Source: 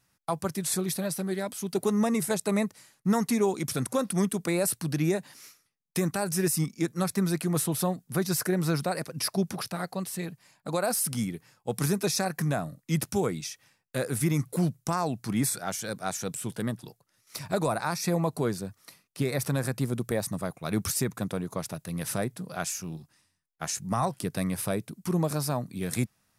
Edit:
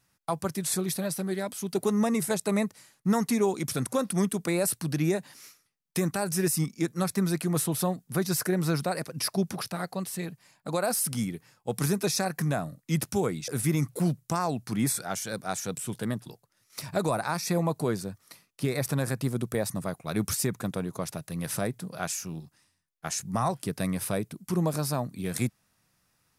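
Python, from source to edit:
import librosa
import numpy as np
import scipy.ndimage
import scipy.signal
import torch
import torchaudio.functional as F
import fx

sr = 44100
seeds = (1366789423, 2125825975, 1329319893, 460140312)

y = fx.edit(x, sr, fx.cut(start_s=13.48, length_s=0.57), tone=tone)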